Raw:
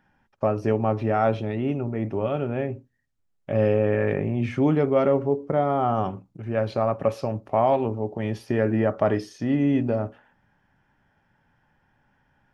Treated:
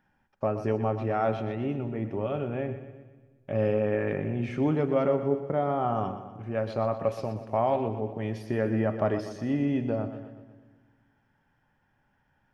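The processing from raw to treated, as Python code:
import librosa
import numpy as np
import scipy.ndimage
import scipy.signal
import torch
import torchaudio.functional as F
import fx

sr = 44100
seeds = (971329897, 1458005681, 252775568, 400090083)

y = fx.echo_split(x, sr, split_hz=340.0, low_ms=172, high_ms=122, feedback_pct=52, wet_db=-11)
y = y * librosa.db_to_amplitude(-5.0)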